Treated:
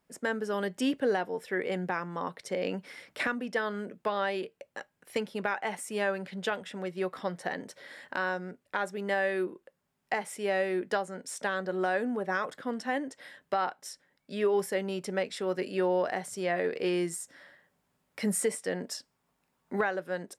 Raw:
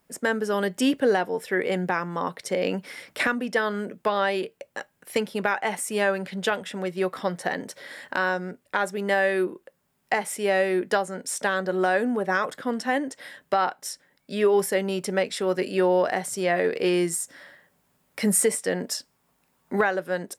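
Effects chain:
high-shelf EQ 10,000 Hz −8.5 dB
level −6.5 dB

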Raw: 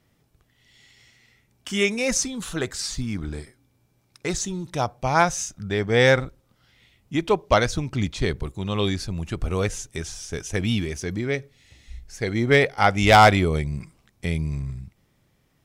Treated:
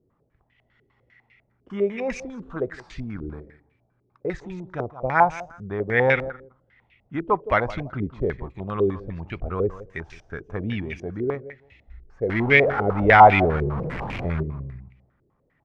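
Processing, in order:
0:12.29–0:14.43: converter with a step at zero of −20.5 dBFS
repeating echo 166 ms, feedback 19%, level −16 dB
low-pass on a step sequencer 10 Hz 410–2,400 Hz
level −5 dB

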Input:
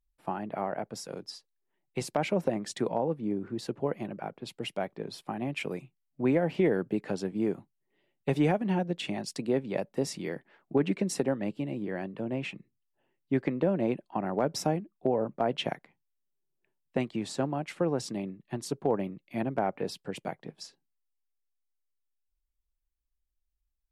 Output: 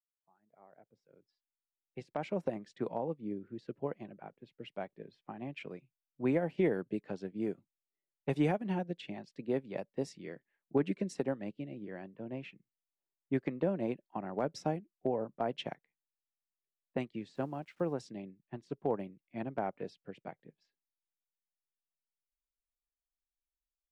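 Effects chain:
fade in at the beginning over 2.66 s
low-pass that shuts in the quiet parts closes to 1,600 Hz, open at −23 dBFS
noise reduction from a noise print of the clip's start 11 dB
0:17.35–0:17.93: centre clipping without the shift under −55.5 dBFS
expander for the loud parts 1.5 to 1, over −48 dBFS
level −3.5 dB

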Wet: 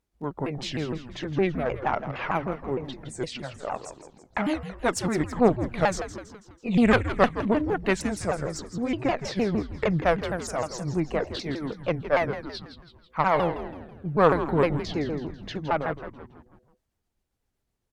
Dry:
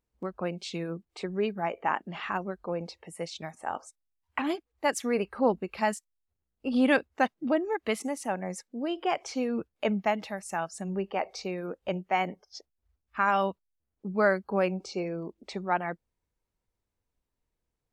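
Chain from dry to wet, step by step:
pitch shifter swept by a sawtooth −6 semitones, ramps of 154 ms
harmonic generator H 4 −16 dB, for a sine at −10.5 dBFS
echo with shifted repeats 164 ms, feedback 51%, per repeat −130 Hz, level −11 dB
level +5 dB

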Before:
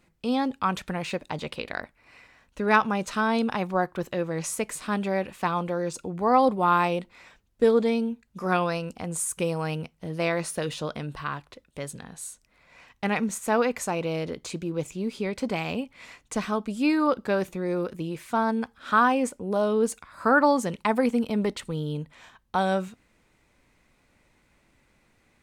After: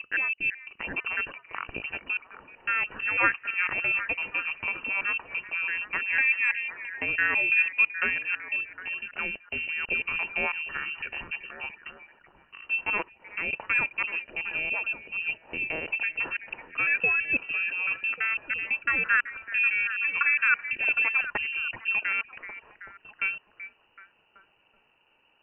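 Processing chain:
slices reordered back to front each 167 ms, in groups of 4
high-pass filter 50 Hz
parametric band 800 Hz −14 dB 0.38 octaves
on a send: echo through a band-pass that steps 380 ms, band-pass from 760 Hz, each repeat 0.7 octaves, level −8 dB
on the sum: voice inversion scrambler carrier 2,900 Hz
level −1 dB

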